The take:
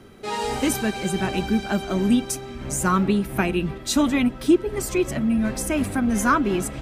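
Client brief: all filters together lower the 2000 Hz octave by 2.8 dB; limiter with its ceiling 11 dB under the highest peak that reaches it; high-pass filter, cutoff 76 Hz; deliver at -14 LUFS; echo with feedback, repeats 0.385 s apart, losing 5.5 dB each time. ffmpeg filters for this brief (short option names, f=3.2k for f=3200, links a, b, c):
-af "highpass=76,equalizer=f=2k:t=o:g=-4,alimiter=limit=-18.5dB:level=0:latency=1,aecho=1:1:385|770|1155|1540|1925|2310|2695:0.531|0.281|0.149|0.079|0.0419|0.0222|0.0118,volume=12dB"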